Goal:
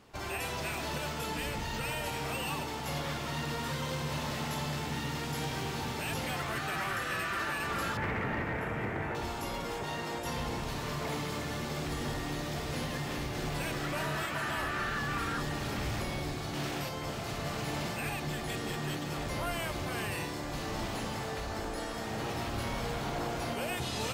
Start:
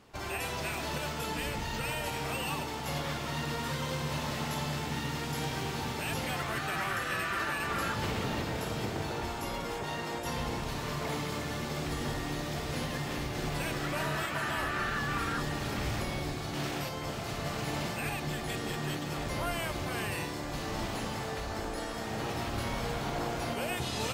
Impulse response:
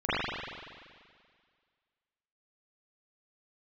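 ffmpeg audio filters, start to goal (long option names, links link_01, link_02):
-filter_complex "[0:a]asettb=1/sr,asplit=3[link_01][link_02][link_03];[link_01]atrim=end=7.974[link_04];[link_02]atrim=start=7.97:end=9.15,asetpts=PTS-STARTPTS,afade=type=in:duration=0.004:curve=qsin,afade=type=out:start_time=1.176:duration=0.004:curve=qsin,highshelf=frequency=2900:width_type=q:width=3:gain=-13[link_05];[link_03]atrim=start=9.146[link_06];[link_04][link_05]acrossfade=duration=0.004:curve1=hsin:curve2=qsin[link_07];[link_07][link_06]acrossfade=duration=0.004:curve1=qsin:curve2=hsin,asoftclip=type=tanh:threshold=-25dB"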